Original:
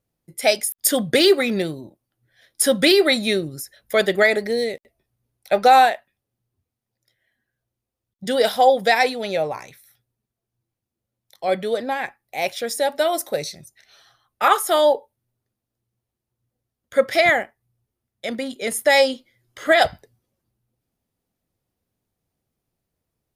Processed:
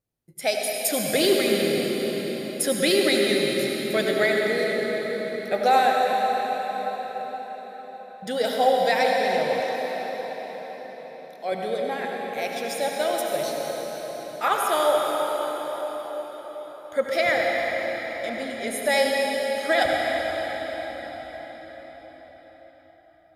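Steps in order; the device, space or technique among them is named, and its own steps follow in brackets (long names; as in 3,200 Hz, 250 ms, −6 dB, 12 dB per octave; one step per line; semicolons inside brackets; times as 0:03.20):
cathedral (convolution reverb RT60 5.9 s, pre-delay 67 ms, DRR −1.5 dB)
0:09.60–0:11.52: high-pass filter 220 Hz 12 dB per octave
level −7 dB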